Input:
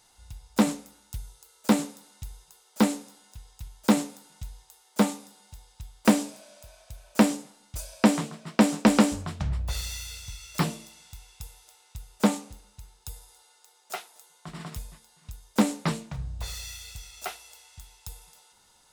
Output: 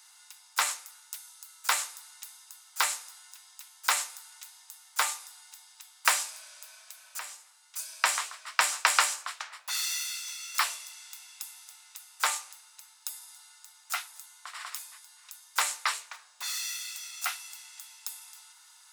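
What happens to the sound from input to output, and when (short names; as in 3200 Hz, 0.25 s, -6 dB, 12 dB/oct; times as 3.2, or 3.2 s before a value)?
7.19–8.2 fade in, from -17.5 dB
whole clip: HPF 1100 Hz 24 dB/oct; bell 3300 Hz -3 dB 0.68 oct; gain +6.5 dB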